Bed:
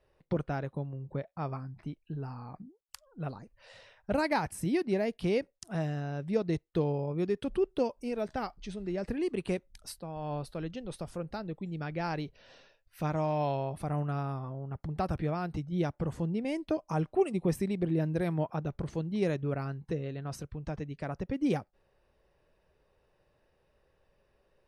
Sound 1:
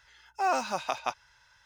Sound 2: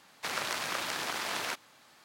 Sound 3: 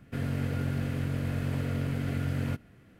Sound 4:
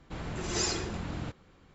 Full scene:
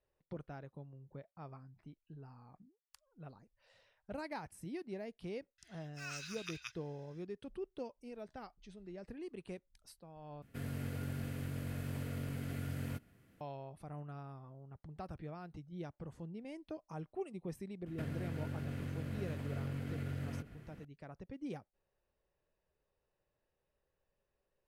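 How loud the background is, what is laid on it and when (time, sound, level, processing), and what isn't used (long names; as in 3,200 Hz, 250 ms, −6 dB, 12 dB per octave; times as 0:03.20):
bed −14.5 dB
0:05.58: mix in 1 −7 dB + inverse Chebyshev band-stop filter 320–660 Hz, stop band 70 dB
0:10.42: overwrite with 3 −10 dB + high-shelf EQ 7,100 Hz +11.5 dB
0:17.86: mix in 3 −0.5 dB + downward compressor, threshold −37 dBFS
not used: 2, 4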